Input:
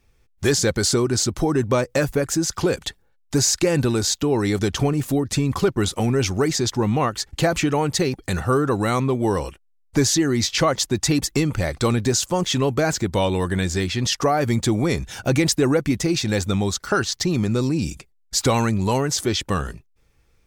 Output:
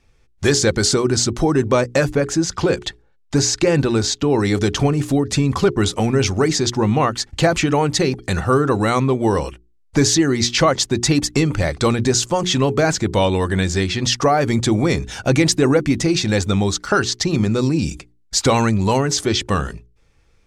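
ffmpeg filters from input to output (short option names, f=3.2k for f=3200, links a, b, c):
-filter_complex "[0:a]asettb=1/sr,asplit=3[a][b][c];[a]atrim=end=2.104[d];[b]atrim=start=2.1:end=4.3,asetpts=PTS-STARTPTS,afade=t=in:d=0.004:c=qsin,afade=t=out:st=2.196:d=0.004:c=qsin,highshelf=f=8.9k:g=-10.5[e];[c]atrim=start=4.296[f];[d][e]acrossfade=d=0.004:c1=hsin:c2=qsin[g];[g][f]acrossfade=d=0.004:c1=qsin:c2=hsin,lowpass=8.4k,bandreject=f=60:t=h:w=6,bandreject=f=120:t=h:w=6,bandreject=f=180:t=h:w=6,bandreject=f=240:t=h:w=6,bandreject=f=300:t=h:w=6,bandreject=f=360:t=h:w=6,bandreject=f=420:t=h:w=6,volume=4dB"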